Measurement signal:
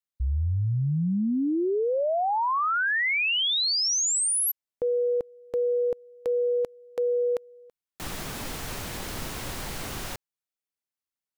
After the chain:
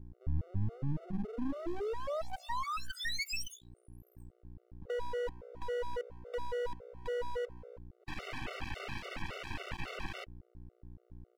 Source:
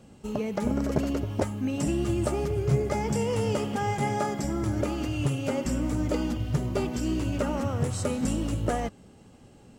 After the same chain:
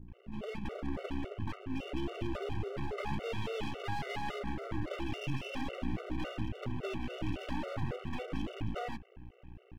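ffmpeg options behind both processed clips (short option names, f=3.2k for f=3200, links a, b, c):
-filter_complex "[0:a]aresample=16000,aresample=44100,highshelf=f=3.4k:t=q:w=3:g=-8.5,acrossover=split=170|4200[a][b][c];[b]dynaudnorm=f=850:g=5:m=3dB[d];[a][d][c]amix=inputs=3:normalize=0,acrossover=split=200[e][f];[f]adelay=80[g];[e][g]amix=inputs=2:normalize=0,acrossover=split=470|4000[h][i][j];[i]acompressor=threshold=-30dB:ratio=2:release=44:knee=2.83:detection=peak[k];[h][k][j]amix=inputs=3:normalize=0,aeval=exprs='(tanh(11.2*val(0)+0.6)-tanh(0.6))/11.2':c=same,aeval=exprs='val(0)+0.00355*(sin(2*PI*60*n/s)+sin(2*PI*2*60*n/s)/2+sin(2*PI*3*60*n/s)/3+sin(2*PI*4*60*n/s)/4+sin(2*PI*5*60*n/s)/5)':c=same,asuperstop=centerf=5500:order=20:qfactor=1,bass=f=250:g=2,treble=f=4k:g=-8,aeval=exprs='max(val(0),0)':c=same,afftfilt=real='re*gt(sin(2*PI*3.6*pts/sr)*(1-2*mod(floor(b*sr/1024/380),2)),0)':imag='im*gt(sin(2*PI*3.6*pts/sr)*(1-2*mod(floor(b*sr/1024/380),2)),0)':win_size=1024:overlap=0.75,volume=3dB"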